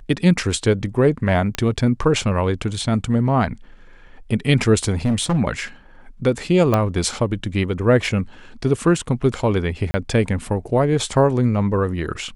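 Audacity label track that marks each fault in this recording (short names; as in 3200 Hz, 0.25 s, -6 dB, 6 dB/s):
1.550000	1.550000	pop -8 dBFS
5.050000	5.390000	clipped -14.5 dBFS
6.740000	6.740000	pop -6 dBFS
9.910000	9.940000	gap 30 ms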